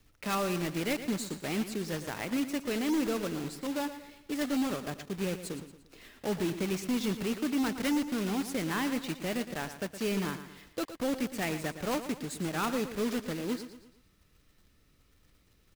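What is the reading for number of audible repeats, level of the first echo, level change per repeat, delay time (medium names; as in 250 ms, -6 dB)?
4, -11.5 dB, -7.5 dB, 115 ms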